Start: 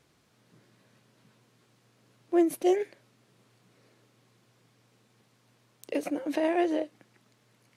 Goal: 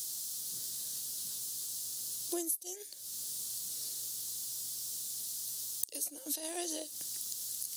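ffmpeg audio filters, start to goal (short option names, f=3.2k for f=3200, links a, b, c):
-af "aexciter=amount=15:drive=3.8:freq=3.5k,aemphasis=mode=production:type=75kf,acompressor=threshold=-34dB:ratio=12"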